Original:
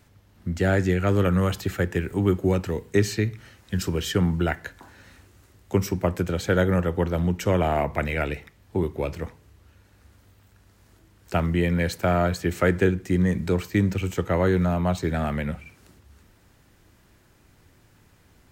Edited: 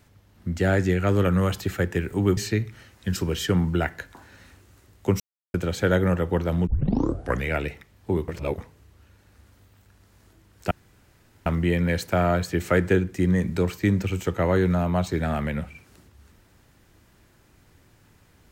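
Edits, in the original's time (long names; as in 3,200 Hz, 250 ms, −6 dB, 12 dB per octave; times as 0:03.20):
0:02.37–0:03.03: remove
0:05.86–0:06.20: silence
0:07.33: tape start 0.81 s
0:08.94–0:09.24: reverse
0:11.37: splice in room tone 0.75 s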